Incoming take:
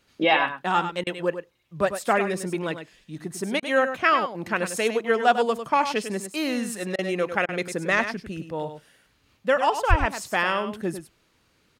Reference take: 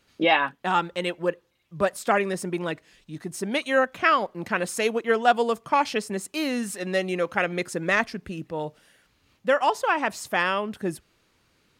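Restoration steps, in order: 9.89–10.01 s: high-pass 140 Hz 24 dB/octave; interpolate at 1.04/3.60/6.96/7.46 s, 25 ms; inverse comb 100 ms -9.5 dB

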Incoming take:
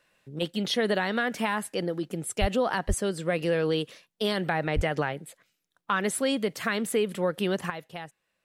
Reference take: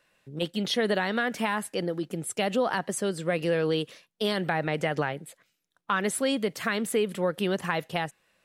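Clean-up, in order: de-plosive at 2.40/2.87/4.75 s; trim 0 dB, from 7.70 s +9.5 dB

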